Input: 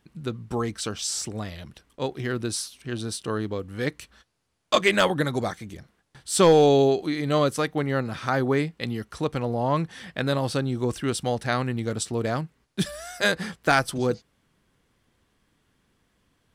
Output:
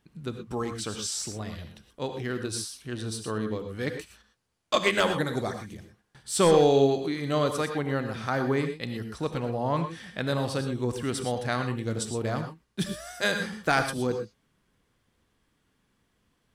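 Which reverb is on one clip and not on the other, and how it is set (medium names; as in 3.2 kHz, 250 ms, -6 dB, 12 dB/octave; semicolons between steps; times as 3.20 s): gated-style reverb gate 140 ms rising, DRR 6.5 dB; trim -4 dB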